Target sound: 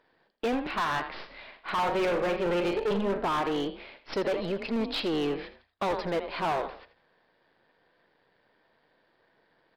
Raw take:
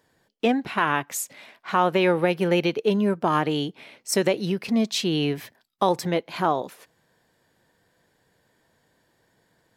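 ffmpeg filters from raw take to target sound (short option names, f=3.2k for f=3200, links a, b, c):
-filter_complex "[0:a]aeval=exprs='if(lt(val(0),0),0.251*val(0),val(0))':c=same,asettb=1/sr,asplit=3[a][b][c];[a]atrim=end=1.054[d];[b]atrim=start=1.05:end=3.25,asetpts=PTS-STARTPTS,afade=t=in:d=0.004:c=qsin,afade=t=out:st=2.196:d=0.004:c=qsin,asplit=2[e][f];[f]adelay=40,volume=-8dB[g];[e][g]amix=inputs=2:normalize=0,atrim=end_sample=97020[h];[c]atrim=start=3.246[i];[d][h]acrossfade=d=0.004:c1=hsin:c2=qsin[j];[j][i]acrossfade=d=0.004:c1=qsin:c2=hsin,asplit=4[k][l][m][n];[l]adelay=81,afreqshift=30,volume=-13dB[o];[m]adelay=162,afreqshift=60,volume=-23.2dB[p];[n]adelay=243,afreqshift=90,volume=-33.3dB[q];[k][o][p][q]amix=inputs=4:normalize=0,aresample=11025,aresample=44100,bass=f=250:g=-8,treble=f=4k:g=-1,asplit=2[r][s];[s]highpass=f=720:p=1,volume=14dB,asoftclip=type=tanh:threshold=-8.5dB[t];[r][t]amix=inputs=2:normalize=0,lowpass=f=2.9k:p=1,volume=-6dB,lowshelf=f=400:g=10,asoftclip=type=hard:threshold=-19dB,volume=-5dB"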